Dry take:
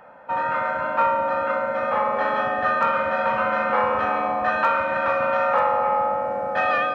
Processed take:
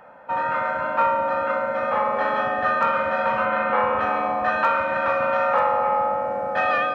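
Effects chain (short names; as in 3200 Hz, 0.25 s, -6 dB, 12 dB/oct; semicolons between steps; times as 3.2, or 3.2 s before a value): 3.45–4.01 LPF 4000 Hz 24 dB/oct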